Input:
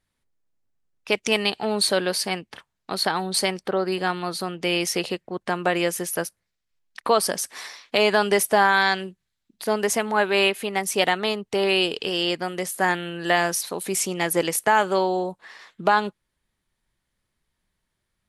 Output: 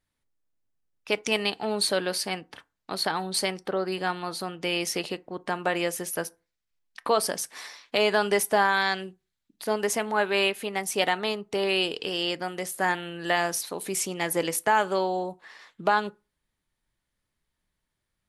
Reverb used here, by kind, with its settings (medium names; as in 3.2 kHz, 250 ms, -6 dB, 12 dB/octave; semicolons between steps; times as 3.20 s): FDN reverb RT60 0.3 s, low-frequency decay 1×, high-frequency decay 0.55×, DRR 15 dB; trim -4 dB